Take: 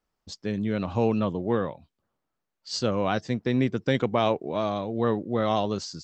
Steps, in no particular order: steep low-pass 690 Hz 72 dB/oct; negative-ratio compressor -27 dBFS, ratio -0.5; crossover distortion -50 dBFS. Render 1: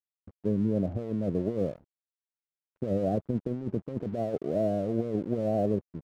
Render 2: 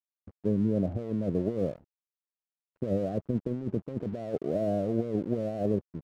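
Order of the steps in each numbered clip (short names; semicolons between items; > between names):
steep low-pass > negative-ratio compressor > crossover distortion; negative-ratio compressor > steep low-pass > crossover distortion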